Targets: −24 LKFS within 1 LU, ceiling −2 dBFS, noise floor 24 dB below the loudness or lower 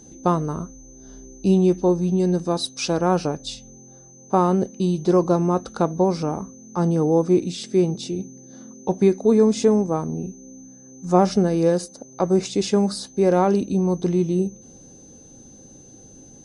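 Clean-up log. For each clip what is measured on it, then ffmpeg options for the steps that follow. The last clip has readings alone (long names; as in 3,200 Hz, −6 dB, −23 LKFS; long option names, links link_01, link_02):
interfering tone 6,200 Hz; level of the tone −47 dBFS; integrated loudness −21.0 LKFS; sample peak −3.0 dBFS; target loudness −24.0 LKFS
→ -af "bandreject=frequency=6200:width=30"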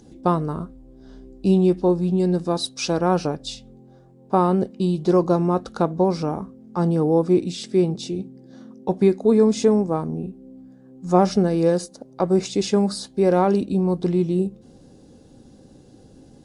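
interfering tone none found; integrated loudness −21.0 LKFS; sample peak −2.5 dBFS; target loudness −24.0 LKFS
→ -af "volume=-3dB"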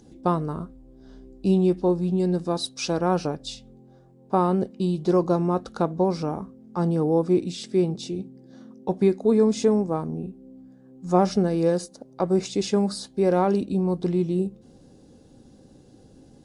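integrated loudness −24.0 LKFS; sample peak −5.5 dBFS; background noise floor −53 dBFS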